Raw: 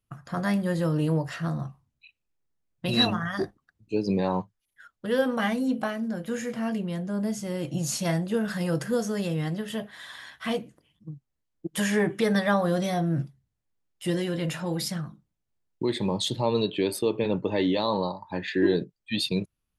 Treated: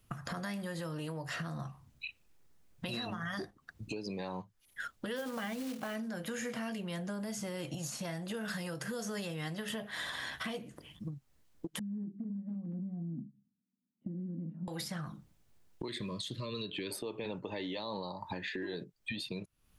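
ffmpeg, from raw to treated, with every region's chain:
ffmpeg -i in.wav -filter_complex "[0:a]asettb=1/sr,asplit=3[link_01][link_02][link_03];[link_01]atrim=end=5.164[link_04];[link_02]atrim=start=5.16:end=5.95,asetpts=PTS-STARTPTS,afade=type=in:duration=0.004:curve=qsin,afade=type=out:start_time=0.786:duration=0.004:curve=qsin,highshelf=frequency=3600:gain=-8,acrusher=bits=5:mode=log:mix=0:aa=0.000001[link_05];[link_03]atrim=start=5.946[link_06];[link_04][link_05]acrossfade=duration=0.004:curve1=hsin:curve2=qsin[link_07];[link_07][link_06]acrossfade=duration=0.004:curve1=qsin:curve2=hsin,asettb=1/sr,asplit=3[link_08][link_09][link_10];[link_08]atrim=end=11.794[link_11];[link_09]atrim=start=11.79:end=14.68,asetpts=PTS-STARTPTS,afade=type=in:duration=0.004:curve=qsin,afade=type=out:start_time=2.886:duration=0.004:curve=qsin,aeval=exprs='(mod(5.62*val(0)+1,2)-1)/5.62':channel_layout=same,asuperpass=centerf=220:order=4:qfactor=3.2[link_12];[link_10]atrim=start=14.676[link_13];[link_11][link_12]acrossfade=duration=0.004:curve1=hsin:curve2=qsin[link_14];[link_14][link_13]acrossfade=duration=0.004:curve1=qsin:curve2=hsin,asettb=1/sr,asplit=3[link_15][link_16][link_17];[link_15]atrim=end=15.884[link_18];[link_16]atrim=start=15.88:end=16.91,asetpts=PTS-STARTPTS,afade=type=in:duration=0.004:curve=qsin,afade=type=out:start_time=1.026:duration=0.004:curve=qsin,asuperstop=centerf=800:order=20:qfactor=2.6,equalizer=frequency=640:width=0.86:gain=-8[link_19];[link_17]atrim=start=16.906[link_20];[link_18][link_19]acrossfade=duration=0.004:curve1=hsin:curve2=qsin[link_21];[link_21][link_20]acrossfade=duration=0.004:curve1=qsin:curve2=hsin,acompressor=threshold=-43dB:ratio=2.5,alimiter=level_in=12.5dB:limit=-24dB:level=0:latency=1:release=288,volume=-12.5dB,acrossover=split=680|1900[link_22][link_23][link_24];[link_22]acompressor=threshold=-54dB:ratio=4[link_25];[link_23]acompressor=threshold=-59dB:ratio=4[link_26];[link_24]acompressor=threshold=-56dB:ratio=4[link_27];[link_25][link_26][link_27]amix=inputs=3:normalize=0,volume=14dB" out.wav

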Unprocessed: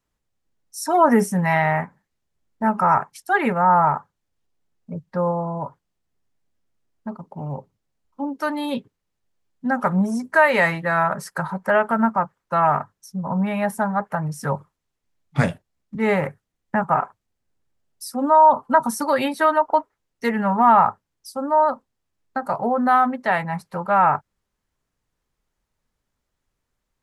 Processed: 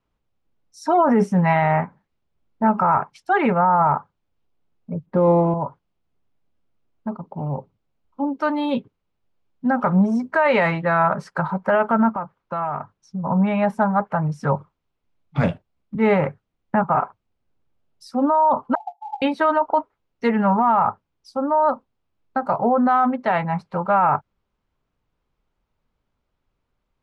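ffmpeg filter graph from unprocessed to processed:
ffmpeg -i in.wav -filter_complex "[0:a]asettb=1/sr,asplit=3[link_01][link_02][link_03];[link_01]atrim=end=5.064[link_04];[link_02]atrim=start=5.06:end=5.54,asetpts=PTS-STARTPTS,afade=type=in:duration=0.004:curve=qsin,afade=type=out:start_time=0.476:duration=0.004:curve=qsin,equalizer=frequency=320:width_type=o:width=1.2:gain=13,adynamicsmooth=sensitivity=4.5:basefreq=3200[link_05];[link_03]atrim=start=5.536[link_06];[link_04][link_05]acrossfade=duration=0.004:curve1=hsin:curve2=qsin[link_07];[link_07][link_06]acrossfade=duration=0.004:curve1=qsin:curve2=hsin,asettb=1/sr,asplit=3[link_08][link_09][link_10];[link_08]atrim=end=12.094[link_11];[link_09]atrim=start=12.09:end=13.24,asetpts=PTS-STARTPTS,afade=type=in:duration=0.004:curve=qsin,afade=type=out:start_time=1.146:duration=0.004:curve=qsin,lowpass=7600,acompressor=threshold=-28dB:ratio=3:attack=3.2:release=140:knee=1:detection=peak[link_12];[link_10]atrim=start=13.236[link_13];[link_11][link_12]acrossfade=duration=0.004:curve1=hsin:curve2=qsin[link_14];[link_14][link_13]acrossfade=duration=0.004:curve1=qsin:curve2=hsin,asettb=1/sr,asplit=3[link_15][link_16][link_17];[link_15]atrim=end=18.754[link_18];[link_16]atrim=start=18.75:end=19.22,asetpts=PTS-STARTPTS,afade=type=in:duration=0.004:curve=qsin,afade=type=out:start_time=0.466:duration=0.004:curve=qsin,asuperpass=centerf=780:order=20:qfactor=4.6,acrusher=bits=6:mode=log:mix=0:aa=0.000001[link_19];[link_17]atrim=start=19.216[link_20];[link_18][link_19]acrossfade=duration=0.004:curve1=hsin:curve2=qsin[link_21];[link_21][link_20]acrossfade=duration=0.004:curve1=qsin:curve2=hsin,lowpass=3100,equalizer=frequency=1800:width_type=o:width=0.35:gain=-7,alimiter=limit=-13dB:level=0:latency=1:release=11,volume=3.5dB" out.wav

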